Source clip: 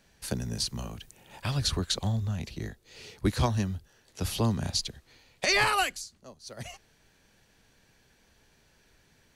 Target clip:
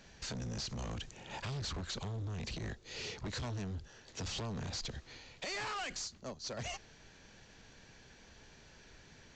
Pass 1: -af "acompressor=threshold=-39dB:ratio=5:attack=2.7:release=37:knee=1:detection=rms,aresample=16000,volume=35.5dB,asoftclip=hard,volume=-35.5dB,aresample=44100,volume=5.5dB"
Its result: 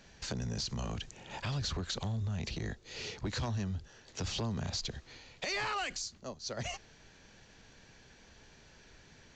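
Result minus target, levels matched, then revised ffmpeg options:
overloaded stage: distortion -13 dB
-af "acompressor=threshold=-39dB:ratio=5:attack=2.7:release=37:knee=1:detection=rms,aresample=16000,volume=43dB,asoftclip=hard,volume=-43dB,aresample=44100,volume=5.5dB"

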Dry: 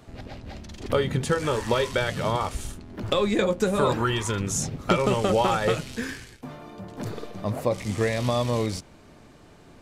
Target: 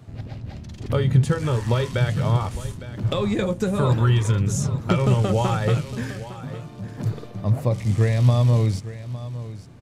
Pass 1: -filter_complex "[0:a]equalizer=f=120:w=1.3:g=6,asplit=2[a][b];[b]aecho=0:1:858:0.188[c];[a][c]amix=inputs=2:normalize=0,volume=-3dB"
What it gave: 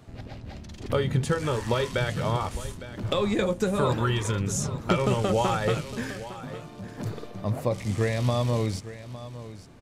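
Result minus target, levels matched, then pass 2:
125 Hz band -3.5 dB
-filter_complex "[0:a]equalizer=f=120:w=1.3:g=16,asplit=2[a][b];[b]aecho=0:1:858:0.188[c];[a][c]amix=inputs=2:normalize=0,volume=-3dB"

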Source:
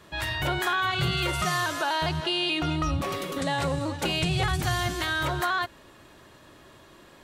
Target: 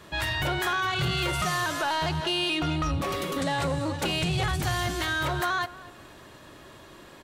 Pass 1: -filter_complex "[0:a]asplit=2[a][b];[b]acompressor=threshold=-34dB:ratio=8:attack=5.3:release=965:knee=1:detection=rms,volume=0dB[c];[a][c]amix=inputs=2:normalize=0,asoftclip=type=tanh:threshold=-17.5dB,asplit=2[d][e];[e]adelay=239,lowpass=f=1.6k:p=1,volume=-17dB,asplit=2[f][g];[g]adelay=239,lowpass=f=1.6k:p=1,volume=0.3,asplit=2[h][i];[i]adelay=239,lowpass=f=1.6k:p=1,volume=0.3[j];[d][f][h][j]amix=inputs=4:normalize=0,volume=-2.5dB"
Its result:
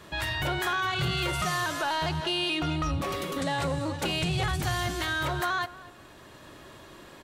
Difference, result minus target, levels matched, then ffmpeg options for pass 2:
compressor: peak gain reduction +7.5 dB
-filter_complex "[0:a]asplit=2[a][b];[b]acompressor=threshold=-25.5dB:ratio=8:attack=5.3:release=965:knee=1:detection=rms,volume=0dB[c];[a][c]amix=inputs=2:normalize=0,asoftclip=type=tanh:threshold=-17.5dB,asplit=2[d][e];[e]adelay=239,lowpass=f=1.6k:p=1,volume=-17dB,asplit=2[f][g];[g]adelay=239,lowpass=f=1.6k:p=1,volume=0.3,asplit=2[h][i];[i]adelay=239,lowpass=f=1.6k:p=1,volume=0.3[j];[d][f][h][j]amix=inputs=4:normalize=0,volume=-2.5dB"

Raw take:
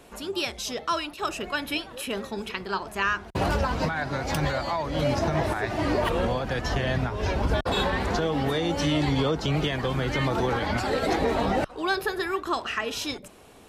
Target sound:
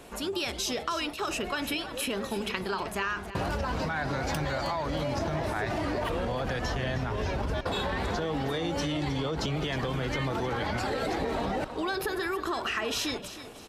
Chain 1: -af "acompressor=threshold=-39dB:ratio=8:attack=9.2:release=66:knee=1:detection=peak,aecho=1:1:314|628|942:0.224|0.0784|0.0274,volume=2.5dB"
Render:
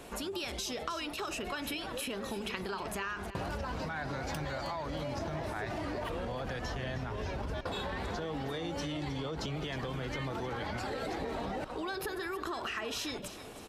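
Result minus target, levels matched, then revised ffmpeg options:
compressor: peak gain reduction +6.5 dB
-af "acompressor=threshold=-31.5dB:ratio=8:attack=9.2:release=66:knee=1:detection=peak,aecho=1:1:314|628|942:0.224|0.0784|0.0274,volume=2.5dB"

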